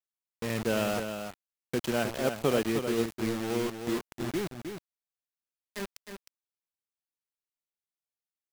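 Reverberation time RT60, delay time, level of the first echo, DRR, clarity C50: no reverb, 310 ms, -7.5 dB, no reverb, no reverb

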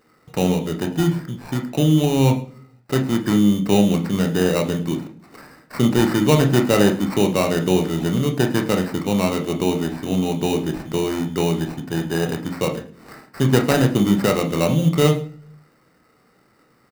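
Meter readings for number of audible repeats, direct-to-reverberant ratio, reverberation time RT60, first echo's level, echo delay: 1, 3.0 dB, 0.45 s, -19.0 dB, 106 ms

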